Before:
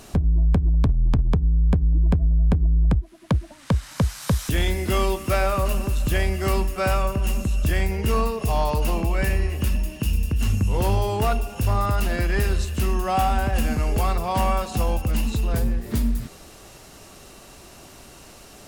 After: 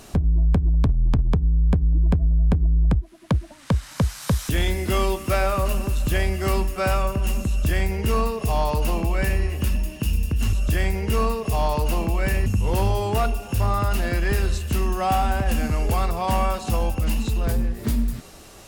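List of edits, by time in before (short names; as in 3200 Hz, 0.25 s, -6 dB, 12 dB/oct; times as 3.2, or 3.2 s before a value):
7.49–9.42 copy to 10.53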